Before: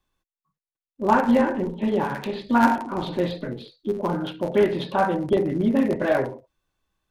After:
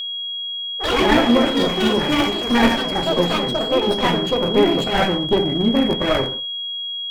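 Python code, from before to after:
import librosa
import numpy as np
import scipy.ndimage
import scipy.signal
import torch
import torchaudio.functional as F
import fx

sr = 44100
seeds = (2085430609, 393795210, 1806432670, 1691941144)

y = fx.lower_of_two(x, sr, delay_ms=0.41)
y = fx.echo_pitch(y, sr, ms=98, semitones=4, count=3, db_per_echo=-3.0)
y = y + 10.0 ** (-28.0 / 20.0) * np.sin(2.0 * np.pi * 3300.0 * np.arange(len(y)) / sr)
y = F.gain(torch.from_numpy(y), 3.5).numpy()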